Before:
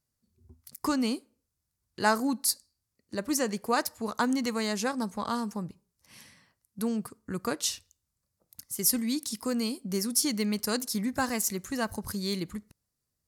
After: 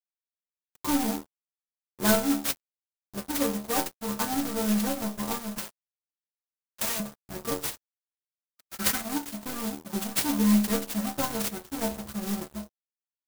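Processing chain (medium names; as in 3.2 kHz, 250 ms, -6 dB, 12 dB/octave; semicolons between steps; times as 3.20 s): square wave that keeps the level; bit crusher 9-bit; inharmonic resonator 67 Hz, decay 0.54 s, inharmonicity 0.008; gate -56 dBFS, range -8 dB; crossover distortion -46 dBFS; 5.58–7.00 s: tilt EQ +4.5 dB/octave; 7.93–9.01 s: time-frequency box 1.2–2.5 kHz +12 dB; sampling jitter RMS 0.11 ms; trim +8.5 dB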